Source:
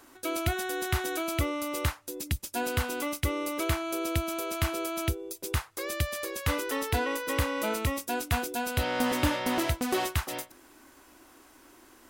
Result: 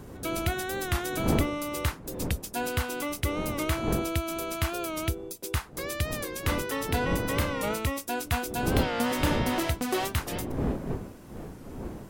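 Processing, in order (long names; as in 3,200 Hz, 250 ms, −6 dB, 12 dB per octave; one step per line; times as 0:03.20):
wind on the microphone 320 Hz −35 dBFS
wow of a warped record 45 rpm, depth 100 cents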